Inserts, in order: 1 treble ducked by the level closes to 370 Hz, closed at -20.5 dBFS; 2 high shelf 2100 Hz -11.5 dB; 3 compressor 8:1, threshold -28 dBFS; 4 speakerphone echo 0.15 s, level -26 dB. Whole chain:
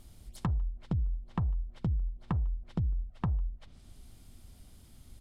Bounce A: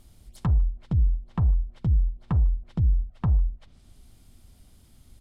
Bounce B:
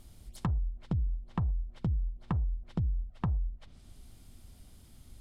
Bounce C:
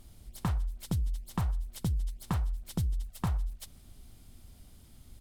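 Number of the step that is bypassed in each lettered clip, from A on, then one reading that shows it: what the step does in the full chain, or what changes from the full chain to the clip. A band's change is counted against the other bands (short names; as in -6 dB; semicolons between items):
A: 3, mean gain reduction 4.5 dB; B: 4, echo-to-direct -30.0 dB to none; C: 1, 2 kHz band +3.5 dB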